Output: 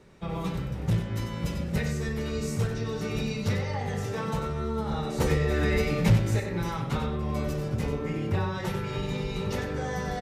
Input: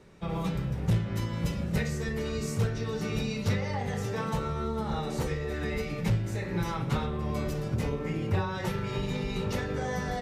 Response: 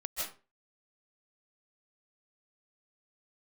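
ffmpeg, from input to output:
-filter_complex "[0:a]asettb=1/sr,asplit=3[s0][s1][s2];[s0]atrim=end=5.204[s3];[s1]atrim=start=5.2:end=6.4,asetpts=PTS-STARTPTS,afade=t=in:d=0.004:c=qsin,afade=t=out:st=1.196:d=0.004:c=qsin,acontrast=55[s4];[s2]atrim=start=6.396[s5];[s3][s4]acrossfade=d=0.004:c1=hsin:c2=qsin[s6];[s6][s5]acrossfade=d=0.004:c1=qsin:c2=hsin,aecho=1:1:94:0.376"

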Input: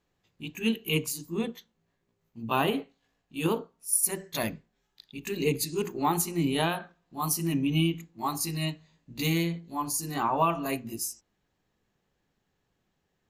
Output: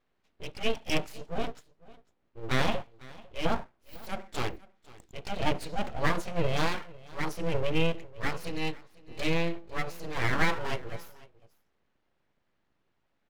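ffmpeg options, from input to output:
-af "lowpass=3000,aeval=exprs='abs(val(0))':c=same,aecho=1:1:500:0.0841,volume=1.26"

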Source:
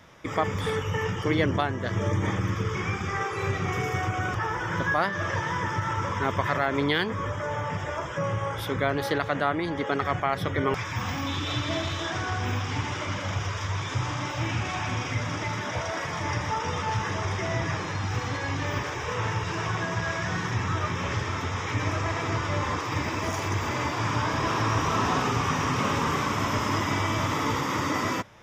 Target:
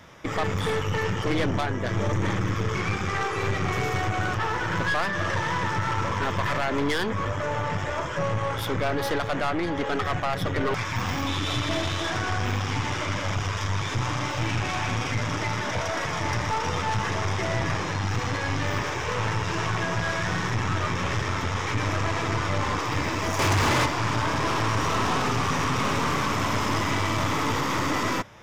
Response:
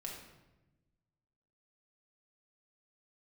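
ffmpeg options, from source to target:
-filter_complex "[0:a]aeval=exprs='(tanh(22.4*val(0)+0.55)-tanh(0.55))/22.4':c=same,asettb=1/sr,asplit=3[s0][s1][s2];[s0]atrim=end=23.394[s3];[s1]atrim=start=23.39:end=23.86,asetpts=PTS-STARTPTS,afade=t=in:d=0.004:c=qsin,afade=t=out:st=0.466:d=0.004:c=qsin,aeval=exprs='0.0668*sin(PI/2*1.78*val(0)/0.0668)':c=same[s4];[s2]atrim=start=23.856[s5];[s3][s4]acrossfade=d=0.004:c1=hsin:c2=qsin[s6];[s6][s5]acrossfade=d=0.004:c1=qsin:c2=hsin,volume=2"

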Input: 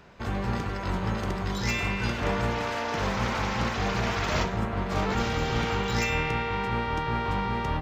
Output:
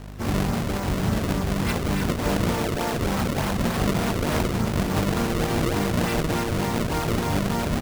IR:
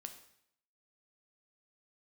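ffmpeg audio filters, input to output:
-filter_complex "[0:a]asplit=2[s0][s1];[s1]alimiter=limit=0.0668:level=0:latency=1:release=18,volume=0.944[s2];[s0][s2]amix=inputs=2:normalize=0,asplit=3[s3][s4][s5];[s4]asetrate=33038,aresample=44100,atempo=1.33484,volume=0.631[s6];[s5]asetrate=66075,aresample=44100,atempo=0.66742,volume=0.355[s7];[s3][s6][s7]amix=inputs=3:normalize=0,aeval=exprs='val(0)+0.0178*(sin(2*PI*50*n/s)+sin(2*PI*2*50*n/s)/2+sin(2*PI*3*50*n/s)/3+sin(2*PI*4*50*n/s)/4+sin(2*PI*5*50*n/s)/5)':c=same,equalizer=f=200:w=0.61:g=6.5,bandreject=f=60:t=h:w=6,bandreject=f=120:t=h:w=6,bandreject=f=180:t=h:w=6,acrusher=samples=31:mix=1:aa=0.000001:lfo=1:lforange=49.6:lforate=3.4,volume=0.596"

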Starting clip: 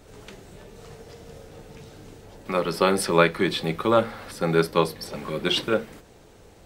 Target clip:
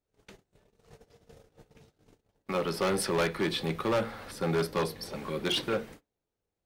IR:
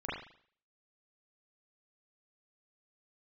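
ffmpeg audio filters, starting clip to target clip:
-filter_complex "[0:a]asoftclip=type=hard:threshold=0.106,agate=range=0.0251:threshold=0.00891:ratio=16:detection=peak,bandreject=f=7700:w=22,asplit=2[s0][s1];[1:a]atrim=start_sample=2205,atrim=end_sample=3969[s2];[s1][s2]afir=irnorm=-1:irlink=0,volume=0.0398[s3];[s0][s3]amix=inputs=2:normalize=0,volume=0.596"

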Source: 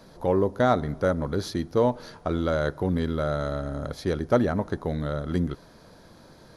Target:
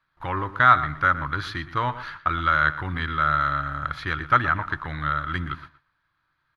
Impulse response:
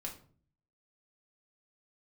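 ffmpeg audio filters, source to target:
-filter_complex "[0:a]agate=range=0.0501:threshold=0.00631:ratio=16:detection=peak,firequalizer=gain_entry='entry(140,0);entry(210,-16);entry(300,-5);entry(440,-17);entry(1200,15);entry(2900,10);entry(5400,-8);entry(12000,-11)':delay=0.05:min_phase=1,asplit=2[s0][s1];[s1]adelay=119,lowpass=f=3800:p=1,volume=0.2,asplit=2[s2][s3];[s3]adelay=119,lowpass=f=3800:p=1,volume=0.17[s4];[s2][s4]amix=inputs=2:normalize=0[s5];[s0][s5]amix=inputs=2:normalize=0"

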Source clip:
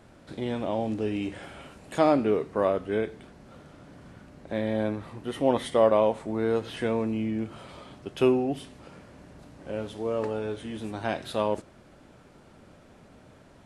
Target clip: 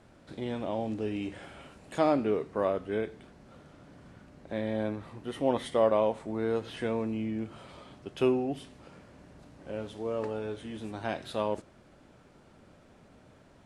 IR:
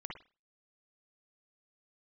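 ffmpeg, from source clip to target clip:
-af "lowpass=11000,volume=0.631"

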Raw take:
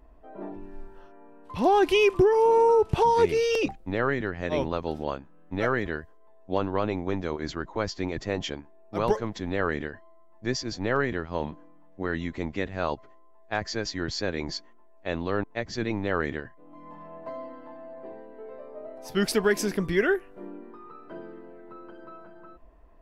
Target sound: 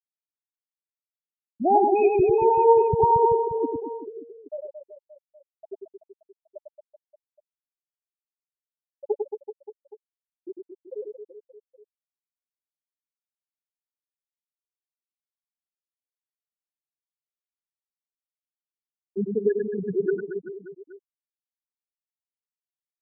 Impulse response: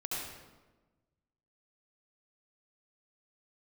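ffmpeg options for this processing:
-filter_complex "[0:a]afftfilt=real='re*gte(hypot(re,im),0.501)':imag='im*gte(hypot(re,im),0.501)':win_size=1024:overlap=0.75,lowpass=f=1300:p=1,equalizer=f=860:w=7.3:g=8.5,asplit=2[s0][s1];[s1]aecho=0:1:100|225|381.2|576.6|820.7:0.631|0.398|0.251|0.158|0.1[s2];[s0][s2]amix=inputs=2:normalize=0"

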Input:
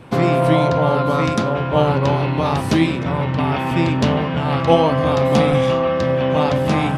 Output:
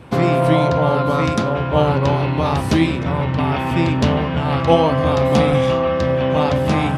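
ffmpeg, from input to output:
-af "equalizer=f=73:t=o:w=0.39:g=10.5"

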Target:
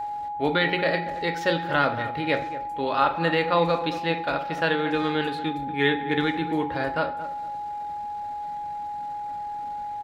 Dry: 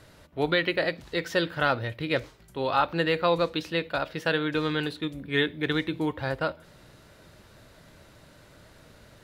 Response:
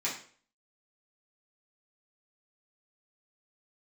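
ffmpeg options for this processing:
-filter_complex "[0:a]highshelf=f=5200:g=-5.5,aeval=exprs='val(0)+0.0282*sin(2*PI*830*n/s)':c=same,asplit=2[s0][s1];[s1]adelay=208,lowpass=f=1300:p=1,volume=0.251,asplit=2[s2][s3];[s3]adelay=208,lowpass=f=1300:p=1,volume=0.27,asplit=2[s4][s5];[s5]adelay=208,lowpass=f=1300:p=1,volume=0.27[s6];[s0][s2][s4][s6]amix=inputs=4:normalize=0,asplit=2[s7][s8];[1:a]atrim=start_sample=2205,highshelf=f=7200:g=-8[s9];[s8][s9]afir=irnorm=-1:irlink=0,volume=0.376[s10];[s7][s10]amix=inputs=2:normalize=0,atempo=0.92"

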